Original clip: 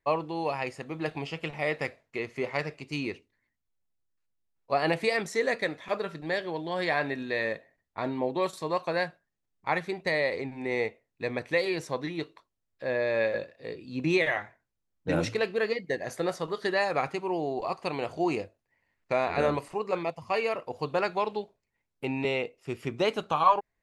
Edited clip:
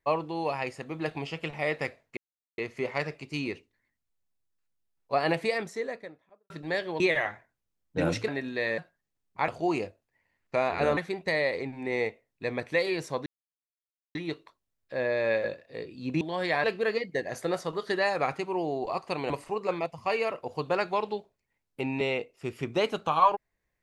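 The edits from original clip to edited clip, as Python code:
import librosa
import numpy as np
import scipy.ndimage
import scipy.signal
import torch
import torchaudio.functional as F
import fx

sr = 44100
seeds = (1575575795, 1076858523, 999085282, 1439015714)

y = fx.studio_fade_out(x, sr, start_s=4.81, length_s=1.28)
y = fx.edit(y, sr, fx.insert_silence(at_s=2.17, length_s=0.41),
    fx.swap(start_s=6.59, length_s=0.43, other_s=14.11, other_length_s=1.28),
    fx.cut(start_s=7.52, length_s=1.54),
    fx.insert_silence(at_s=12.05, length_s=0.89),
    fx.move(start_s=18.05, length_s=1.49, to_s=9.76), tone=tone)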